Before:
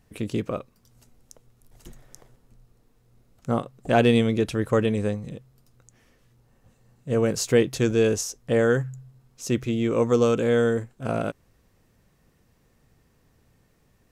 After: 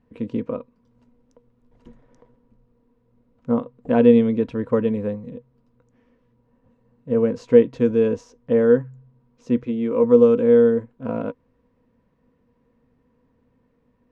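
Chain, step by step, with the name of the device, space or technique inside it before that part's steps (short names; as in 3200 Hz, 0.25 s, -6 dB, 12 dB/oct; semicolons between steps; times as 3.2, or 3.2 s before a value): inside a cardboard box (LPF 2600 Hz 12 dB/oct; small resonant body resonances 250/480/970 Hz, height 15 dB, ringing for 65 ms); 9.64–10.04 low shelf 140 Hz -10.5 dB; gain -6 dB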